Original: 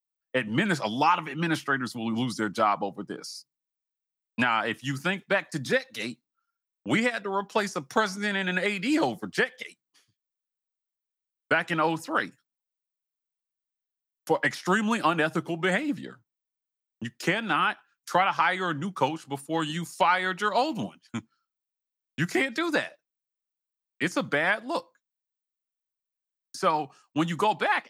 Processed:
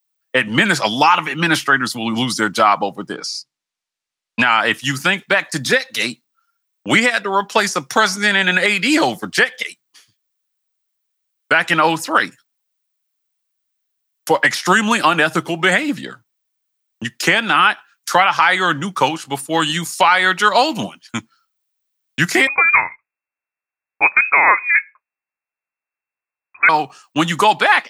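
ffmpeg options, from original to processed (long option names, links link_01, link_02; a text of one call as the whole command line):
ffmpeg -i in.wav -filter_complex "[0:a]asettb=1/sr,asplit=3[link_01][link_02][link_03];[link_01]atrim=end=3.144[link_04];[link_02]atrim=start=3.14:end=4.43,asetpts=PTS-STARTPTS,afade=type=in:duration=0.004:curve=qsin,afade=type=out:start_time=1.286:duration=0.004:curve=qsin,lowpass=6700[link_05];[link_03]atrim=start=4.426[link_06];[link_04][link_05]acrossfade=duration=0.004:curve1=hsin:curve2=qsin[link_07];[link_07][link_06]acrossfade=duration=0.004:curve1=qsin:curve2=hsin,asettb=1/sr,asplit=3[link_08][link_09][link_10];[link_08]atrim=end=22.474[link_11];[link_09]atrim=start=22.47:end=26.69,asetpts=PTS-STARTPTS,afade=type=in:duration=0.004:curve=qsin,afade=type=out:start_time=4.216:duration=0.004:curve=qsin,lowpass=frequency=2300:width_type=q:width=0.5098,lowpass=frequency=2300:width_type=q:width=0.6013,lowpass=frequency=2300:width_type=q:width=0.9,lowpass=frequency=2300:width_type=q:width=2.563,afreqshift=-2700[link_12];[link_10]atrim=start=26.686[link_13];[link_11][link_12]acrossfade=duration=0.004:curve1=hsin:curve2=qsin[link_14];[link_14][link_13]acrossfade=duration=0.004:curve1=qsin:curve2=hsin,tiltshelf=frequency=780:gain=-4.5,alimiter=level_in=12.5dB:limit=-1dB:release=50:level=0:latency=1,volume=-1dB" out.wav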